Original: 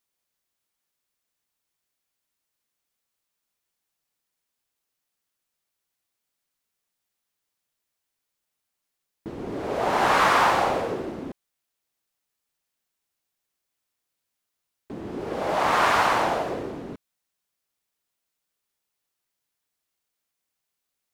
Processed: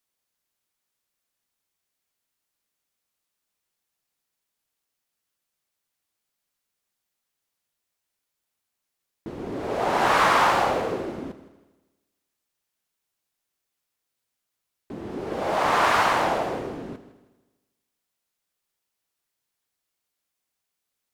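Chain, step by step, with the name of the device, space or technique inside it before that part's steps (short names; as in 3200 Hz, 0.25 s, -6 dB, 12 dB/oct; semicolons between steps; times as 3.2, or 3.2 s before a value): multi-head tape echo (multi-head echo 80 ms, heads first and second, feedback 47%, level -17 dB; wow and flutter)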